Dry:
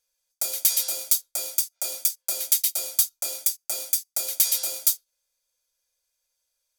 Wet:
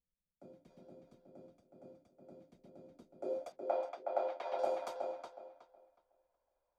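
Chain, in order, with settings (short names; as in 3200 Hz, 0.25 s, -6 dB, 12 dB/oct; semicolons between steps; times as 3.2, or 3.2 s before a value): low-pass sweep 180 Hz -> 790 Hz, 2.86–3.61; 3.52–4.59 three-band isolator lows -24 dB, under 290 Hz, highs -23 dB, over 4000 Hz; darkening echo 0.368 s, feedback 25%, low-pass 4300 Hz, level -4.5 dB; gain +4.5 dB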